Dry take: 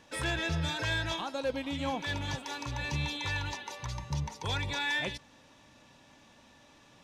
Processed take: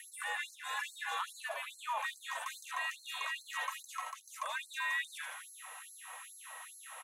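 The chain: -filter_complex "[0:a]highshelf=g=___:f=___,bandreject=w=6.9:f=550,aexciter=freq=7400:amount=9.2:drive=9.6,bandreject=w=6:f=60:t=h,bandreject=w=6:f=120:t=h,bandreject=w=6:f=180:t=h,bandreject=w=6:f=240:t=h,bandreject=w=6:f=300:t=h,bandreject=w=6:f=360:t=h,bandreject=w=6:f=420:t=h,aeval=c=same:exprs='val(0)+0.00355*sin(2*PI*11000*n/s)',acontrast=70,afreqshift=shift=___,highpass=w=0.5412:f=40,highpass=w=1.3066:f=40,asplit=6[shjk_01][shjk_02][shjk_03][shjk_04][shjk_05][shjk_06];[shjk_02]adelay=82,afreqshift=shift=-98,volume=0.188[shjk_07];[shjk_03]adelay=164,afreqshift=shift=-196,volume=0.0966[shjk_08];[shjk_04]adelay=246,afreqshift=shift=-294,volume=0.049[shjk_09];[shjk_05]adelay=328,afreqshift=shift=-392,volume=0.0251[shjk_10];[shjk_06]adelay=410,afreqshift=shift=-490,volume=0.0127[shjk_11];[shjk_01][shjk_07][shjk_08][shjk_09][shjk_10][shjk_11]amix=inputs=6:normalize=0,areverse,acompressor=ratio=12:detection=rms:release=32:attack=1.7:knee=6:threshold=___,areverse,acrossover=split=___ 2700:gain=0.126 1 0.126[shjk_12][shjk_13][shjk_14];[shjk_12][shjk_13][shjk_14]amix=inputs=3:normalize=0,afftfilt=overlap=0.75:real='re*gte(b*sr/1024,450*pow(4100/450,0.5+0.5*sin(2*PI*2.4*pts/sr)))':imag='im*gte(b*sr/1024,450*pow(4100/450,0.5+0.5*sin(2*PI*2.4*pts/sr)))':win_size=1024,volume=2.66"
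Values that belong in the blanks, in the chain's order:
-9, 11000, 150, 0.0158, 590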